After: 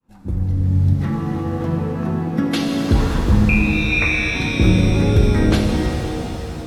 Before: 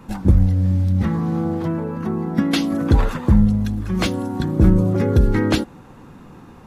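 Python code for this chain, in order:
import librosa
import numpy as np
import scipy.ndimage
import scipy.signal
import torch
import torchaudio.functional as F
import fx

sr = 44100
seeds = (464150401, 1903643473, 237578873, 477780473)

y = fx.fade_in_head(x, sr, length_s=0.89)
y = fx.highpass(y, sr, hz=230.0, slope=12, at=(0.93, 1.67))
y = fx.freq_invert(y, sr, carrier_hz=2600, at=(3.49, 4.35))
y = fx.rev_shimmer(y, sr, seeds[0], rt60_s=3.9, semitones=7, shimmer_db=-8, drr_db=-0.5)
y = F.gain(torch.from_numpy(y), -2.5).numpy()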